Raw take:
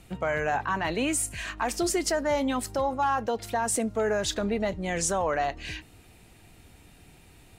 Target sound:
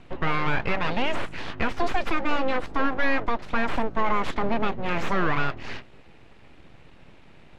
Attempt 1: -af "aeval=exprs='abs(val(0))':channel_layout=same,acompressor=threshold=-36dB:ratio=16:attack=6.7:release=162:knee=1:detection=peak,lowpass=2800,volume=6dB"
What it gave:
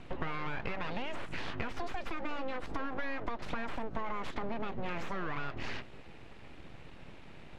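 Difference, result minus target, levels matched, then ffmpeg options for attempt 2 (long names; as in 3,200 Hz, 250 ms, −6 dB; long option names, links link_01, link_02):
downward compressor: peak gain reduction +15 dB
-af "aeval=exprs='abs(val(0))':channel_layout=same,lowpass=2800,volume=6dB"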